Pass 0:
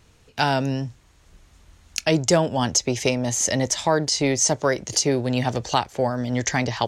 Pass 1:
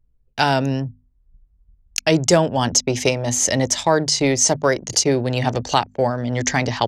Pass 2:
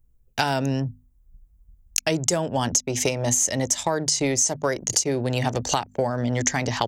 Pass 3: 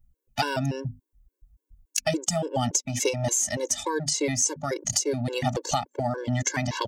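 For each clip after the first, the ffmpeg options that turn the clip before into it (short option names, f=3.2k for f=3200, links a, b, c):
-af "anlmdn=6.31,bandreject=f=50:t=h:w=6,bandreject=f=100:t=h:w=6,bandreject=f=150:t=h:w=6,bandreject=f=200:t=h:w=6,bandreject=f=250:t=h:w=6,volume=3.5dB"
-af "aexciter=amount=3.7:drive=1.5:freq=6.3k,acompressor=threshold=-21dB:ratio=6,volume=1.5dB"
-af "afftfilt=real='re*gt(sin(2*PI*3.5*pts/sr)*(1-2*mod(floor(b*sr/1024/290),2)),0)':imag='im*gt(sin(2*PI*3.5*pts/sr)*(1-2*mod(floor(b*sr/1024/290),2)),0)':win_size=1024:overlap=0.75"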